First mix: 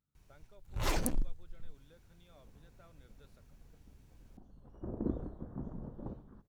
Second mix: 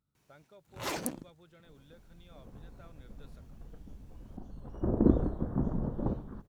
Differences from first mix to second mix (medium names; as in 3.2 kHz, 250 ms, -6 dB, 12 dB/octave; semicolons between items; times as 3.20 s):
speech +5.0 dB; first sound: add high-pass 170 Hz 12 dB/octave; second sound +11.5 dB